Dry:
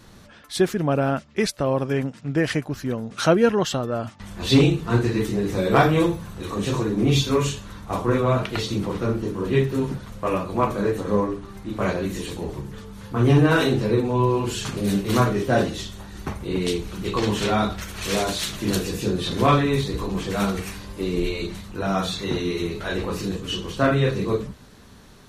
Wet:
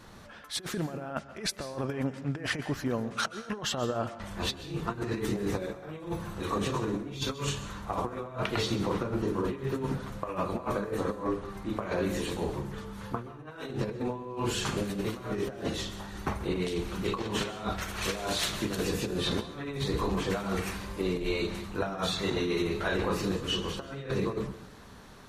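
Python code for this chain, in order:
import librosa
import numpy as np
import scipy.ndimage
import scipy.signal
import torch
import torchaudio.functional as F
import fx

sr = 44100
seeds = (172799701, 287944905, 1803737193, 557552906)

y = fx.peak_eq(x, sr, hz=990.0, db=6.0, octaves=2.5)
y = fx.over_compress(y, sr, threshold_db=-23.0, ratio=-0.5)
y = fx.rev_plate(y, sr, seeds[0], rt60_s=0.62, hf_ratio=0.9, predelay_ms=115, drr_db=13.0)
y = y * 10.0 ** (-8.5 / 20.0)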